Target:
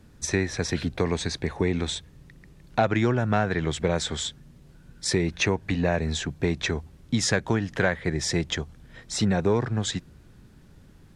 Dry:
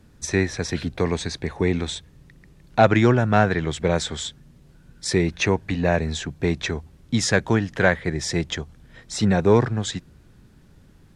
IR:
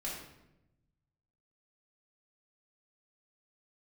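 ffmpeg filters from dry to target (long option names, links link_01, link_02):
-af "acompressor=threshold=-20dB:ratio=3"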